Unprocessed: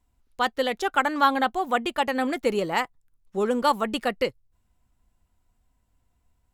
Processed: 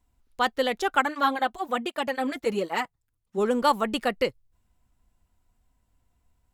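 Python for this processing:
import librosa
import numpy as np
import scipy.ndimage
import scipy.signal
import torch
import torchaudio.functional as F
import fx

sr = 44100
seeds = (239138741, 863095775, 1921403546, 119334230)

y = fx.flanger_cancel(x, sr, hz=1.3, depth_ms=6.1, at=(1.01, 3.37), fade=0.02)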